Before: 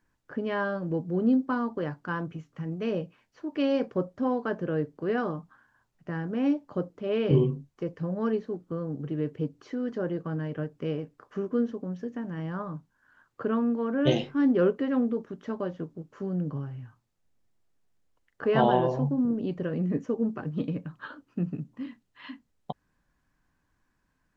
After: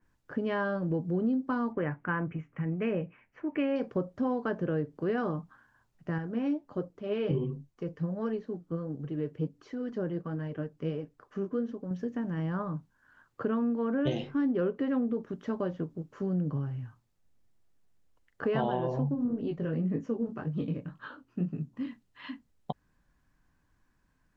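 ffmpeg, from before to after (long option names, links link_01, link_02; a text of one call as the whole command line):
ffmpeg -i in.wav -filter_complex "[0:a]asettb=1/sr,asplit=3[link_01][link_02][link_03];[link_01]atrim=end=1.724[link_04];[link_02]atrim=start=1.72:end=3.76,asetpts=PTS-STARTPTS,afade=type=in:duration=0.004:curve=qsin,afade=type=out:start_time=2.036:duration=0.004:curve=qsin,highshelf=frequency=3100:width_type=q:width=3:gain=-11[link_05];[link_03]atrim=start=3.756[link_06];[link_04][link_05]acrossfade=duration=0.004:curve1=hsin:curve2=qsin[link_07];[link_07][link_06]acrossfade=duration=0.004:curve1=qsin:curve2=hsin,asettb=1/sr,asplit=3[link_08][link_09][link_10];[link_08]atrim=end=6.184[link_11];[link_09]atrim=start=6.18:end=11.91,asetpts=PTS-STARTPTS,afade=type=in:duration=0.004:curve=qsin,afade=type=out:start_time=5.726:duration=0.004:curve=qsin,flanger=delay=1:depth=6:regen=60:speed=1.4:shape=triangular[link_12];[link_10]atrim=start=11.906[link_13];[link_11][link_12]acrossfade=duration=0.004:curve1=hsin:curve2=qsin[link_14];[link_14][link_13]acrossfade=duration=0.004:curve1=qsin:curve2=hsin,asplit=3[link_15][link_16][link_17];[link_15]afade=type=out:start_time=19.14:duration=0.02[link_18];[link_16]flanger=delay=18.5:depth=6.9:speed=1.9,afade=type=in:start_time=19.14:duration=0.02,afade=type=out:start_time=21.75:duration=0.02[link_19];[link_17]afade=type=in:start_time=21.75:duration=0.02[link_20];[link_18][link_19][link_20]amix=inputs=3:normalize=0,lowshelf=frequency=170:gain=4.5,acompressor=threshold=-26dB:ratio=5,adynamicequalizer=threshold=0.00282:dfrequency=3500:dqfactor=0.7:tfrequency=3500:tqfactor=0.7:attack=5:release=100:ratio=0.375:range=2:mode=cutabove:tftype=highshelf" out.wav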